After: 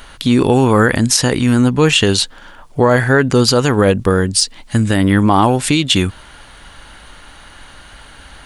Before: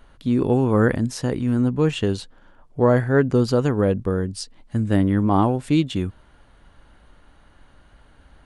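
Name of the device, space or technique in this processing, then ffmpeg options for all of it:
mastering chain: -af "equalizer=f=850:t=o:w=0.26:g=2,acompressor=threshold=-22dB:ratio=1.5,tiltshelf=f=1.3k:g=-7.5,asoftclip=type=hard:threshold=-9dB,alimiter=level_in=18dB:limit=-1dB:release=50:level=0:latency=1,volume=-1dB"

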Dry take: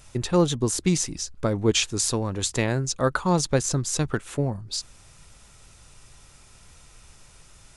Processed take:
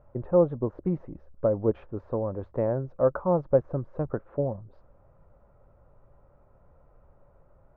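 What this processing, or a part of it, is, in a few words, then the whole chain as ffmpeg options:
under water: -af "lowpass=f=1.2k:w=0.5412,lowpass=f=1.2k:w=1.3066,equalizer=f=560:t=o:w=0.48:g=12,volume=-6dB"

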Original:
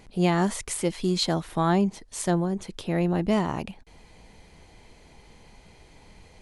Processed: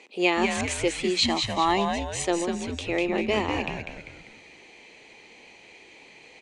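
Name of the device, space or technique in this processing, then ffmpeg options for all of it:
phone speaker on a table: -filter_complex "[0:a]asettb=1/sr,asplit=3[a][b][c];[a]atrim=end=1.254[d];[b]atrim=start=1.25:end=2.25,asetpts=PTS-STARTPTS,afade=t=in:d=0.004:c=qsin,afade=t=out:st=0.996:d=0.004:c=qsin,aecho=1:1:1:0.74,atrim=end_sample=44100[e];[c]atrim=start=2.246[f];[d][e]acrossfade=d=0.004:c1=hsin:c2=qsin[g];[g][f]acrossfade=d=0.004:c1=qsin:c2=hsin,highpass=f=340:w=0.5412,highpass=f=340:w=1.3066,equalizer=f=670:t=q:w=4:g=-6,equalizer=f=1k:t=q:w=4:g=-4,equalizer=f=1.5k:t=q:w=4:g=-9,equalizer=f=2.5k:t=q:w=4:g=10,equalizer=f=5.2k:t=q:w=4:g=-5,lowpass=f=7.5k:w=0.5412,lowpass=f=7.5k:w=1.3066,asplit=6[h][i][j][k][l][m];[i]adelay=197,afreqshift=-130,volume=-5dB[n];[j]adelay=394,afreqshift=-260,volume=-12.3dB[o];[k]adelay=591,afreqshift=-390,volume=-19.7dB[p];[l]adelay=788,afreqshift=-520,volume=-27dB[q];[m]adelay=985,afreqshift=-650,volume=-34.3dB[r];[h][n][o][p][q][r]amix=inputs=6:normalize=0,volume=4dB"

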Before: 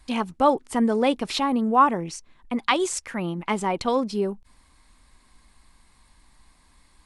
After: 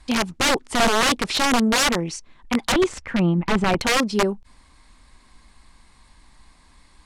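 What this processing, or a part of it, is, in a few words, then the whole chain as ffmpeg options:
overflowing digital effects unit: -filter_complex "[0:a]aeval=exprs='(mod(7.5*val(0)+1,2)-1)/7.5':c=same,lowpass=8.5k,asettb=1/sr,asplit=3[a][b][c];[a]atrim=end=2.724[d];[b]atrim=start=2.72:end=3.8,asetpts=PTS-STARTPTS,afade=t=in:d=0.004:c=qsin,afade=t=out:st=1.076:d=0.004:c=qsin,bass=f=250:g=8,treble=f=4k:g=-14[e];[c]atrim=start=3.796[f];[d][e]acrossfade=d=0.004:c1=hsin:c2=qsin[g];[g][f]acrossfade=d=0.004:c1=qsin:c2=hsin,volume=5dB"

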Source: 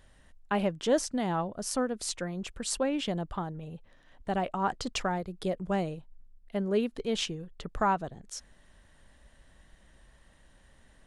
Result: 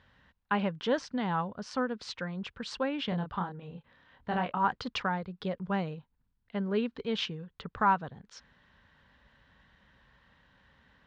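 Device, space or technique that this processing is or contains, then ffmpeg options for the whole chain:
guitar cabinet: -filter_complex "[0:a]highpass=80,equalizer=f=340:t=q:w=4:g=-9,equalizer=f=650:t=q:w=4:g=-8,equalizer=f=1k:t=q:w=4:g=4,equalizer=f=1.5k:t=q:w=4:g=4,lowpass=f=4.4k:w=0.5412,lowpass=f=4.4k:w=1.3066,asettb=1/sr,asplit=3[a][b][c];[a]atrim=end=3.094[d];[b]atrim=start=3.09:end=4.65,asetpts=PTS-STARTPTS,afade=t=in:d=0.004:c=qsin,afade=t=out:st=1.556:d=0.004:c=qsin,asplit=2[e][f];[f]adelay=28,volume=-4.5dB[g];[e][g]amix=inputs=2:normalize=0,atrim=end_sample=68796[h];[c]atrim=start=4.646[i];[d][h]acrossfade=d=0.004:c1=hsin:c2=qsin[j];[j][i]acrossfade=d=0.004:c1=qsin:c2=hsin"

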